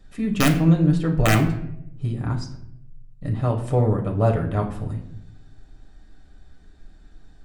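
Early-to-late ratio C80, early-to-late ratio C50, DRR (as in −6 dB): 13.0 dB, 10.0 dB, 1.0 dB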